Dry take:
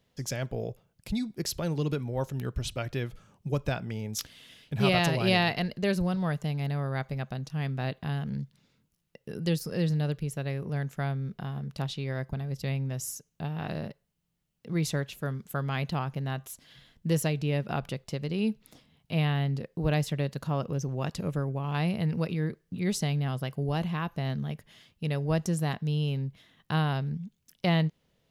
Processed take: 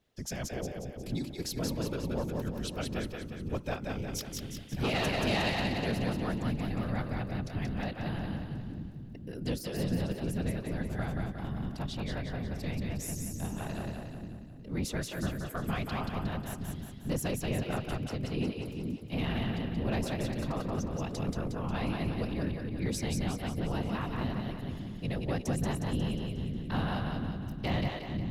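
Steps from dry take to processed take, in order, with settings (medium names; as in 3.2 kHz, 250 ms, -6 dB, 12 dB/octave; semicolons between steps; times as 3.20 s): whisper effect; saturation -20 dBFS, distortion -17 dB; two-band feedback delay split 360 Hz, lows 445 ms, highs 180 ms, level -3 dB; trim -4 dB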